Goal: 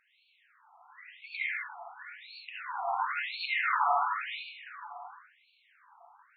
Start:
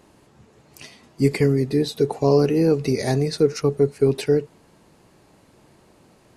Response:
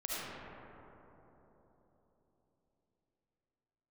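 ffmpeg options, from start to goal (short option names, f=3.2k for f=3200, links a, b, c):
-filter_complex "[0:a]asettb=1/sr,asplit=3[a][b][c];[a]atrim=end=2.854[d];[b]atrim=start=2.85:end=3.82,asetpts=PTS-STARTPTS,afade=t=in:d=0.004:c=qsin,afade=t=out:st=0.966:d=0.004:c=qsin,aeval=exprs='0.501*(cos(1*acos(clip(val(0)/0.501,-1,1)))-cos(1*PI/2))+0.141*(cos(7*acos(clip(val(0)/0.501,-1,1)))-cos(7*PI/2))':c=same[e];[c]atrim=start=3.816[f];[d][e]acrossfade=d=0.004:c1=hsin:c2=qsin[g];[g][f]acrossfade=d=0.004:c1=qsin:c2=hsin[h];[1:a]atrim=start_sample=2205,asetrate=48510,aresample=44100[i];[h][i]afir=irnorm=-1:irlink=0,afftfilt=real='re*between(b*sr/1024,950*pow(3200/950,0.5+0.5*sin(2*PI*0.95*pts/sr))/1.41,950*pow(3200/950,0.5+0.5*sin(2*PI*0.95*pts/sr))*1.41)':imag='im*between(b*sr/1024,950*pow(3200/950,0.5+0.5*sin(2*PI*0.95*pts/sr))/1.41,950*pow(3200/950,0.5+0.5*sin(2*PI*0.95*pts/sr))*1.41)':win_size=1024:overlap=0.75"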